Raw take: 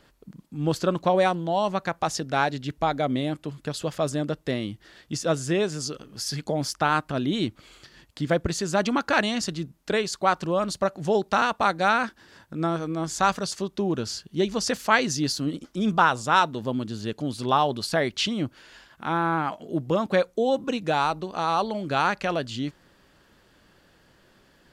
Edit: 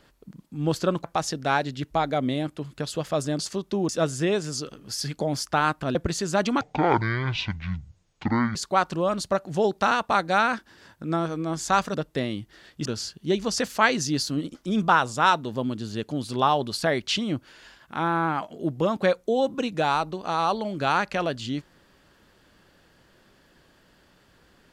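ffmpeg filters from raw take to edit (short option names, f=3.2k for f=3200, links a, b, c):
-filter_complex "[0:a]asplit=9[a][b][c][d][e][f][g][h][i];[a]atrim=end=1.042[j];[b]atrim=start=1.908:end=4.262[k];[c]atrim=start=13.448:end=13.952[l];[d]atrim=start=5.168:end=7.232[m];[e]atrim=start=8.348:end=9.014[n];[f]atrim=start=9.01:end=10.06,asetpts=PTS-STARTPTS,asetrate=23814,aresample=44100[o];[g]atrim=start=10.056:end=13.452[p];[h]atrim=start=4.258:end=5.172[q];[i]atrim=start=13.948[r];[j][k]acrossfade=d=0.004:c1=hsin:c2=hsin[s];[s][l]acrossfade=d=0.004:c1=hsin:c2=hsin[t];[t][m]acrossfade=d=0.004:c1=hsin:c2=hsin[u];[u][n]acrossfade=d=0.004:c1=hsin:c2=hsin[v];[v][o]acrossfade=d=0.004:c1=hsin:c2=hsin[w];[w][p]acrossfade=d=0.004:c1=hsin:c2=hsin[x];[x][q]acrossfade=d=0.004:c1=hsin:c2=hsin[y];[y][r]acrossfade=d=0.004:c1=hsin:c2=hsin"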